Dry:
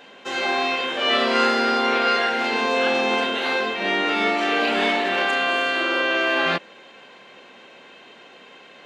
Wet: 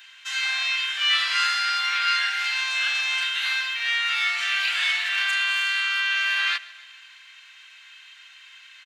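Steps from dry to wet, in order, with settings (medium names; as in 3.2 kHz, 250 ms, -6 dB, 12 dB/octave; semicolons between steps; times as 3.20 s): high-pass 1.5 kHz 24 dB/octave; treble shelf 6 kHz +9 dB; on a send: feedback delay 138 ms, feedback 56%, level -20.5 dB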